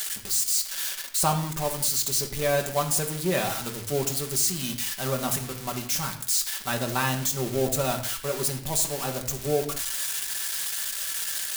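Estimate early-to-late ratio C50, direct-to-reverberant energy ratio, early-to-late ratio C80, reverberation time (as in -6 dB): 9.0 dB, 2.0 dB, 12.0 dB, not exponential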